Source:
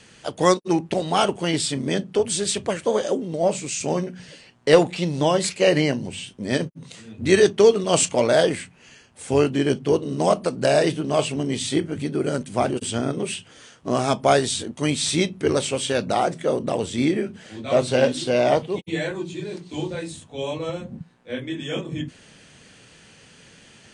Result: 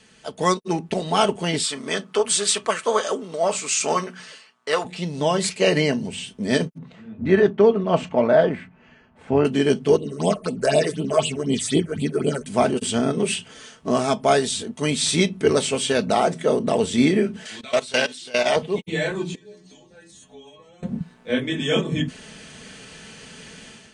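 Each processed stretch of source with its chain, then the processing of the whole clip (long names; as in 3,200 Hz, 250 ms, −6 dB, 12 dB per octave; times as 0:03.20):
0:01.63–0:04.85: high-pass filter 840 Hz 6 dB per octave + parametric band 1,200 Hz +10.5 dB 0.52 octaves
0:06.78–0:09.45: low-pass filter 1,600 Hz + parametric band 440 Hz −7 dB 0.2 octaves
0:09.96–0:12.46: all-pass phaser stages 6, 4 Hz, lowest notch 190–1,700 Hz + floating-point word with a short mantissa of 8 bits
0:17.45–0:18.56: tilt shelving filter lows −9 dB, about 810 Hz + output level in coarse steps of 20 dB
0:19.35–0:20.83: parametric band 6,300 Hz +7 dB 0.2 octaves + downward compressor 12 to 1, threshold −40 dBFS + stiff-string resonator 62 Hz, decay 0.5 s, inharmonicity 0.008
whole clip: comb filter 4.6 ms, depth 45%; automatic gain control; level −4.5 dB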